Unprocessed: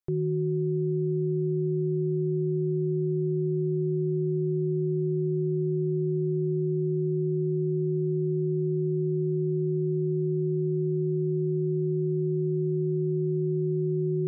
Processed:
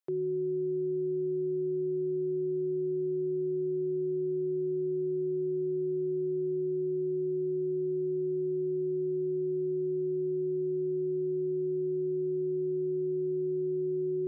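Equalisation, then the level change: Chebyshev high-pass 390 Hz, order 2; 0.0 dB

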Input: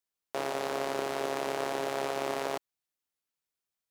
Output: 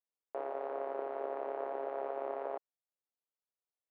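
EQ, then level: ladder band-pass 660 Hz, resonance 25%; air absorption 260 m; +6.5 dB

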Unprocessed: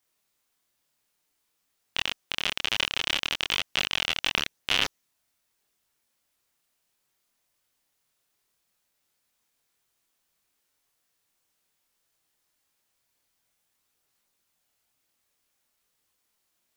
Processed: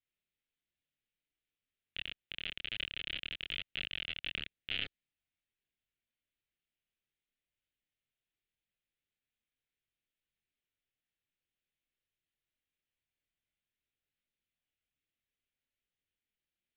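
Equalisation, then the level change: ladder low-pass 4500 Hz, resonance 30%; low shelf 130 Hz +8.5 dB; fixed phaser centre 2400 Hz, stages 4; -7.0 dB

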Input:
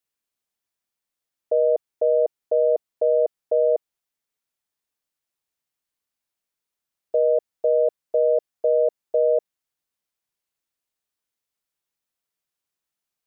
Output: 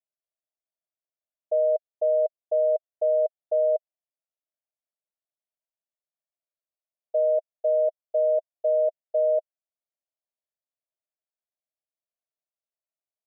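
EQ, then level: band-pass 630 Hz, Q 7.1; 0.0 dB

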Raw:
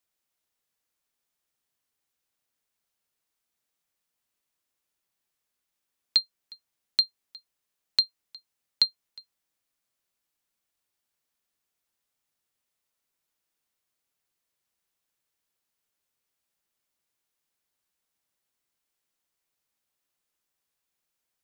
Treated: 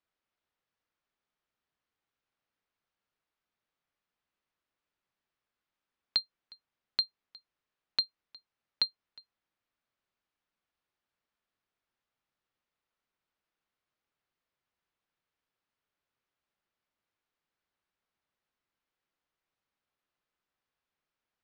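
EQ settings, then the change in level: air absorption 210 m; bell 1300 Hz +2.5 dB 0.77 oct; 0.0 dB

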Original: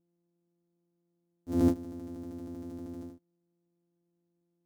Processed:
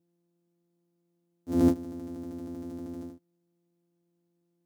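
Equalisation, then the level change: HPF 87 Hz; +3.0 dB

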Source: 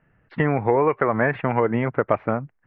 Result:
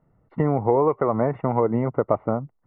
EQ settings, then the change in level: polynomial smoothing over 65 samples; 0.0 dB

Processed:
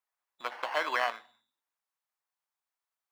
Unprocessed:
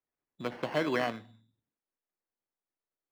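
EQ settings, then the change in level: resonant high-pass 940 Hz, resonance Q 1.6; +2.0 dB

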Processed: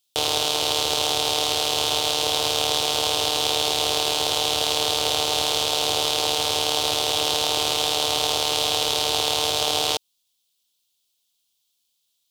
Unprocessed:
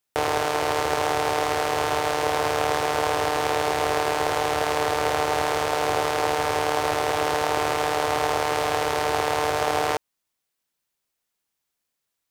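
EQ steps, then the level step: resonant high shelf 2500 Hz +10.5 dB, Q 3; -3.0 dB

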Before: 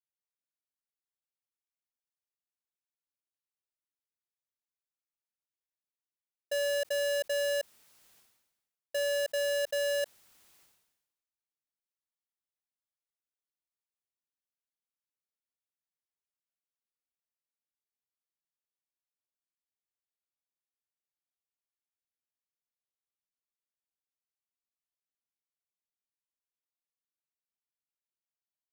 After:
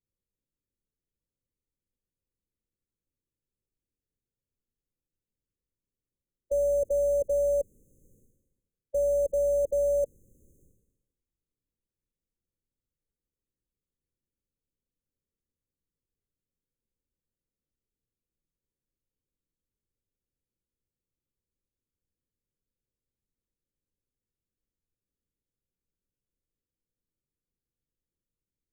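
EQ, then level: brick-wall FIR band-stop 580–6100 Hz; tilt -4 dB/oct; +6.5 dB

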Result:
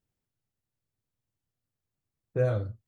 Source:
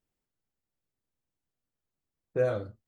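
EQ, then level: bell 110 Hz +11.5 dB 1 oct; -1.5 dB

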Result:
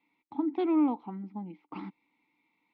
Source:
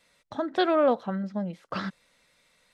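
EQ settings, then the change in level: vowel filter u; air absorption 150 m; +7.5 dB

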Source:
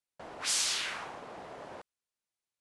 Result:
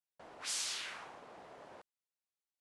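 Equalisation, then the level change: low shelf 200 Hz -3.5 dB; -8.0 dB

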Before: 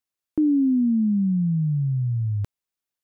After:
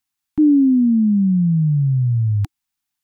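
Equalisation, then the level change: elliptic band-stop 310–750 Hz; Chebyshev band-stop 340–730 Hz, order 3; +7.5 dB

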